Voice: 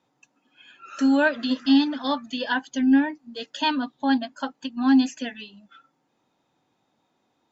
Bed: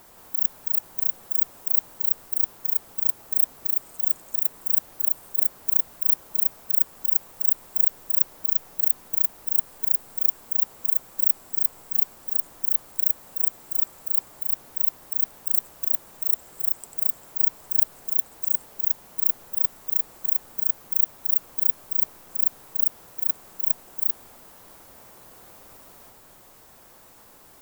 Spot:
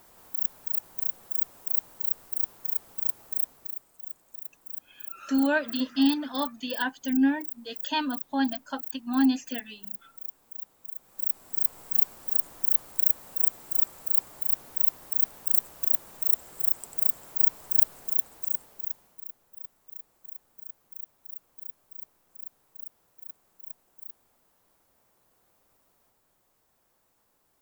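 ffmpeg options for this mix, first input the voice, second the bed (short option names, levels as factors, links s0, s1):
-filter_complex "[0:a]adelay=4300,volume=0.596[s0];[1:a]volume=3.55,afade=t=out:st=3.23:d=0.64:silence=0.266073,afade=t=in:st=10.96:d=0.9:silence=0.158489,afade=t=out:st=17.85:d=1.4:silence=0.112202[s1];[s0][s1]amix=inputs=2:normalize=0"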